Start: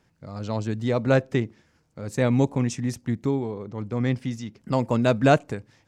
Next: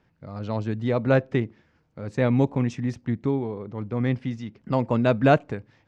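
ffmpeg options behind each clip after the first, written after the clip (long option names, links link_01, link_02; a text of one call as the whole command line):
ffmpeg -i in.wav -af "lowpass=3400" out.wav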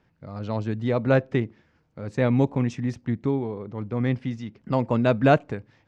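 ffmpeg -i in.wav -af anull out.wav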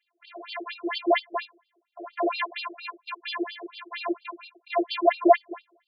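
ffmpeg -i in.wav -af "acrusher=samples=34:mix=1:aa=0.000001,afftfilt=real='hypot(re,im)*cos(PI*b)':imag='0':win_size=512:overlap=0.75,afftfilt=real='re*between(b*sr/1024,440*pow(3700/440,0.5+0.5*sin(2*PI*4.3*pts/sr))/1.41,440*pow(3700/440,0.5+0.5*sin(2*PI*4.3*pts/sr))*1.41)':imag='im*between(b*sr/1024,440*pow(3700/440,0.5+0.5*sin(2*PI*4.3*pts/sr))/1.41,440*pow(3700/440,0.5+0.5*sin(2*PI*4.3*pts/sr))*1.41)':win_size=1024:overlap=0.75,volume=8.5dB" out.wav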